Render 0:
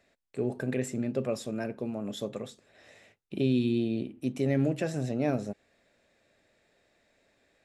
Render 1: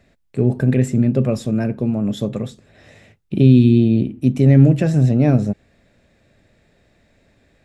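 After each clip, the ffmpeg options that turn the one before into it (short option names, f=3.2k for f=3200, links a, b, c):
-af "bass=f=250:g=14,treble=f=4k:g=-2,volume=7.5dB"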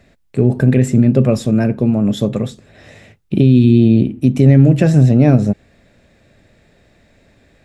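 -af "alimiter=limit=-7dB:level=0:latency=1:release=105,volume=5.5dB"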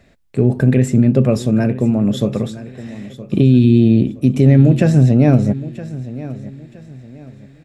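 -af "aecho=1:1:968|1936|2904:0.158|0.0507|0.0162,volume=-1dB"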